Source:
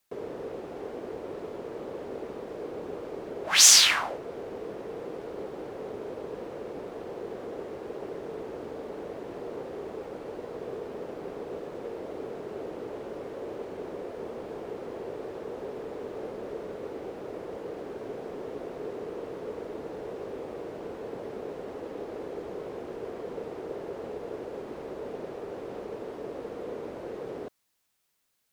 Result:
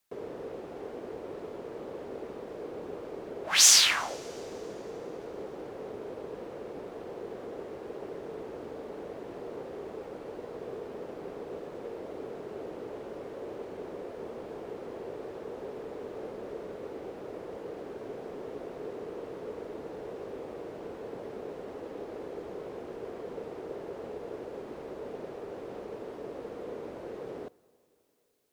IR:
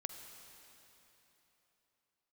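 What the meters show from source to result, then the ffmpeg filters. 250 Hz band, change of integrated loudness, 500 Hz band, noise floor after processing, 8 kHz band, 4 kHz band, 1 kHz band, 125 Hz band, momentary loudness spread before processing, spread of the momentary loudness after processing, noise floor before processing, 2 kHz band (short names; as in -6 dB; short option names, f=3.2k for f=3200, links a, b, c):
-2.5 dB, -2.5 dB, -2.5 dB, -45 dBFS, -2.5 dB, -2.5 dB, -2.5 dB, -2.5 dB, 1 LU, 1 LU, -42 dBFS, -2.5 dB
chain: -filter_complex "[0:a]asplit=2[a][b];[1:a]atrim=start_sample=2205[c];[b][c]afir=irnorm=-1:irlink=0,volume=-13dB[d];[a][d]amix=inputs=2:normalize=0,volume=-4dB"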